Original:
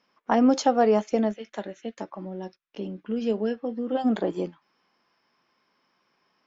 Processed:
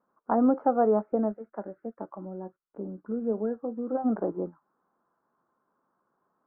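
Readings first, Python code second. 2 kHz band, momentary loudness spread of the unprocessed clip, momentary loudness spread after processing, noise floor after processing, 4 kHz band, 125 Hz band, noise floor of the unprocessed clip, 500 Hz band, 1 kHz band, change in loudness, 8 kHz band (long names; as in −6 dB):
below −10 dB, 17 LU, 17 LU, −79 dBFS, below −40 dB, −3.0 dB, −72 dBFS, −2.5 dB, −3.0 dB, −2.0 dB, can't be measured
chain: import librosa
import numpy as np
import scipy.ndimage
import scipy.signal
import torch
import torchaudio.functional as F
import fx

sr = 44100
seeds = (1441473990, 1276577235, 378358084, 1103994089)

y = scipy.signal.sosfilt(scipy.signal.ellip(4, 1.0, 60, 1400.0, 'lowpass', fs=sr, output='sos'), x)
y = y * 10.0 ** (-2.5 / 20.0)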